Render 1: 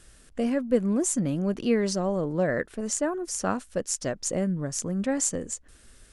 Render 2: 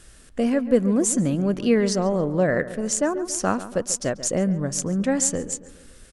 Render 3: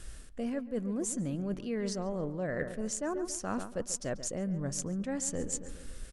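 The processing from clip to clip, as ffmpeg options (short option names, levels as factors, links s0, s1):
-filter_complex "[0:a]asplit=2[s0][s1];[s1]adelay=140,lowpass=f=2300:p=1,volume=0.2,asplit=2[s2][s3];[s3]adelay=140,lowpass=f=2300:p=1,volume=0.52,asplit=2[s4][s5];[s5]adelay=140,lowpass=f=2300:p=1,volume=0.52,asplit=2[s6][s7];[s7]adelay=140,lowpass=f=2300:p=1,volume=0.52,asplit=2[s8][s9];[s9]adelay=140,lowpass=f=2300:p=1,volume=0.52[s10];[s0][s2][s4][s6][s8][s10]amix=inputs=6:normalize=0,volume=1.68"
-af "lowshelf=f=67:g=10.5,areverse,acompressor=threshold=0.0355:ratio=10,areverse,volume=0.794"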